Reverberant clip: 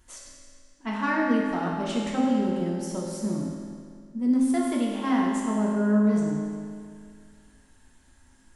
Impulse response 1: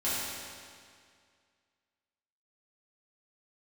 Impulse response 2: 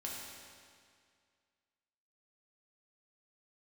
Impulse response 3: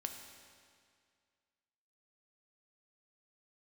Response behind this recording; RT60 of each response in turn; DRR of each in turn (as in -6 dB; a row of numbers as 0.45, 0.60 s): 2; 2.1, 2.1, 2.1 s; -12.0, -4.0, 4.0 dB